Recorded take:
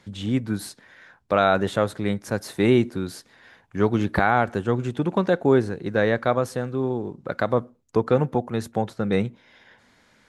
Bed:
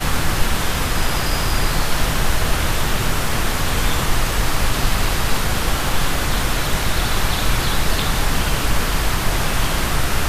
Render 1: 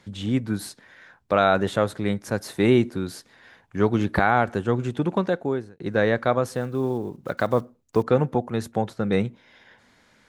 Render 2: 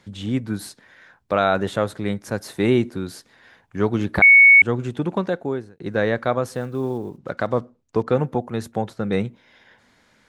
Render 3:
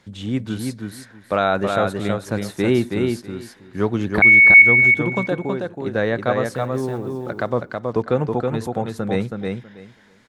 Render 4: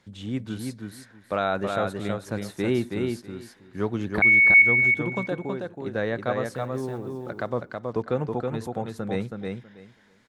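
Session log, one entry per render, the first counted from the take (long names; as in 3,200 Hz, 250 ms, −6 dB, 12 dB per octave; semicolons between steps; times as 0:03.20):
0:05.10–0:05.80: fade out; 0:06.49–0:08.03: one scale factor per block 7 bits
0:04.22–0:04.62: beep over 2,220 Hz −6.5 dBFS; 0:07.18–0:08.08: high-frequency loss of the air 68 metres
repeating echo 323 ms, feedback 17%, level −4 dB
level −6.5 dB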